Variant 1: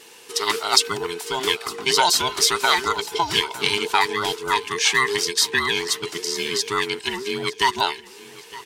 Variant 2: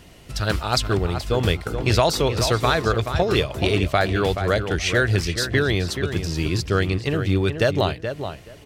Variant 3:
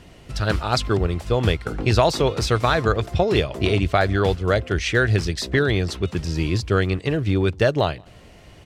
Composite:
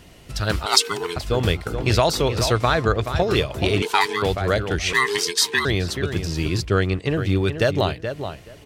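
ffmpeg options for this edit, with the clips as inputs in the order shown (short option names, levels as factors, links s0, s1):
-filter_complex "[0:a]asplit=3[s0][s1][s2];[2:a]asplit=2[s3][s4];[1:a]asplit=6[s5][s6][s7][s8][s9][s10];[s5]atrim=end=0.662[s11];[s0]atrim=start=0.658:end=1.162[s12];[s6]atrim=start=1.158:end=2.522[s13];[s3]atrim=start=2.518:end=3.042[s14];[s7]atrim=start=3.038:end=3.822[s15];[s1]atrim=start=3.818:end=4.222[s16];[s8]atrim=start=4.218:end=4.932[s17];[s2]atrim=start=4.928:end=5.652[s18];[s9]atrim=start=5.648:end=6.652[s19];[s4]atrim=start=6.648:end=7.172[s20];[s10]atrim=start=7.168[s21];[s11][s12]acrossfade=d=0.004:c1=hsin:c2=hsin[s22];[s22][s13]acrossfade=d=0.004:c1=hsin:c2=hsin[s23];[s23][s14]acrossfade=d=0.004:c1=hsin:c2=hsin[s24];[s24][s15]acrossfade=d=0.004:c1=hsin:c2=hsin[s25];[s25][s16]acrossfade=d=0.004:c1=hsin:c2=hsin[s26];[s26][s17]acrossfade=d=0.004:c1=hsin:c2=hsin[s27];[s27][s18]acrossfade=d=0.004:c1=hsin:c2=hsin[s28];[s28][s19]acrossfade=d=0.004:c1=hsin:c2=hsin[s29];[s29][s20]acrossfade=d=0.004:c1=hsin:c2=hsin[s30];[s30][s21]acrossfade=d=0.004:c1=hsin:c2=hsin"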